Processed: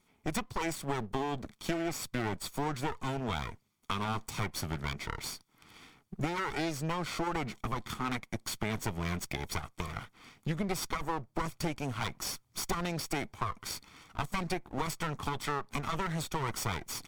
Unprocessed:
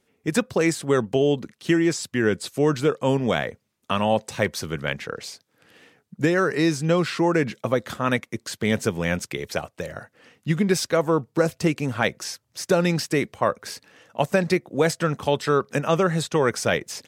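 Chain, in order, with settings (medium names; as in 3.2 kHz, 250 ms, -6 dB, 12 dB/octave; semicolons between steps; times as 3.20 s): comb filter that takes the minimum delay 0.89 ms; compression 3:1, threshold -33 dBFS, peak gain reduction 11.5 dB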